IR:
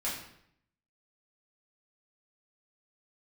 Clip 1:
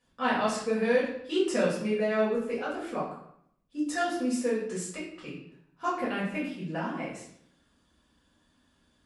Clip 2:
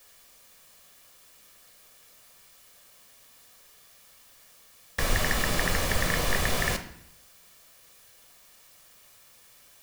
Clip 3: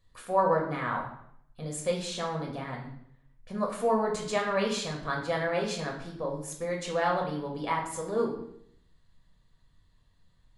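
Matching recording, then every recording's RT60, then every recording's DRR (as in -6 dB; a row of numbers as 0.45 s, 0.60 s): 1; 0.70 s, 0.70 s, 0.70 s; -8.5 dB, 7.0 dB, -1.0 dB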